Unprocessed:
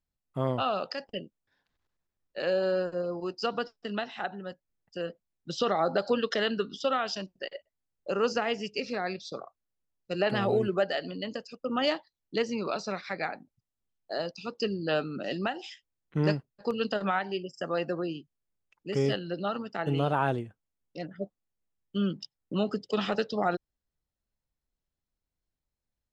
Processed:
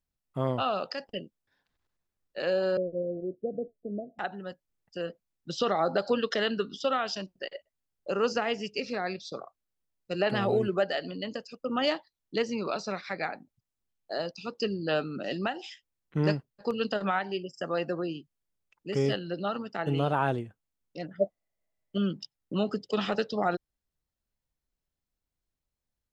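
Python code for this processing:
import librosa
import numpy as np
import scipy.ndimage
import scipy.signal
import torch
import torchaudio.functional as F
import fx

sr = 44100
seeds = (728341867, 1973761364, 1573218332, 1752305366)

y = fx.steep_lowpass(x, sr, hz=650.0, slope=96, at=(2.77, 4.19))
y = fx.small_body(y, sr, hz=(630.0, 2000.0), ring_ms=25, db=15, at=(21.18, 21.98))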